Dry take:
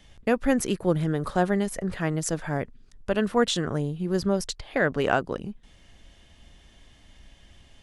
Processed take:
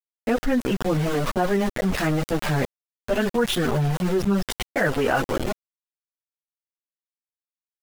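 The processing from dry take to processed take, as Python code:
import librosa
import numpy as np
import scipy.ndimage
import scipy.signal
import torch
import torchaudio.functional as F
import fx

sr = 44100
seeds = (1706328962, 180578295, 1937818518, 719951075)

y = fx.rider(x, sr, range_db=4, speed_s=2.0)
y = scipy.signal.savgol_filter(y, 25, 4, mode='constant')
y = np.where(np.abs(y) >= 10.0 ** (-30.5 / 20.0), y, 0.0)
y = fx.chorus_voices(y, sr, voices=6, hz=0.54, base_ms=12, depth_ms=4.0, mix_pct=65)
y = fx.env_flatten(y, sr, amount_pct=70)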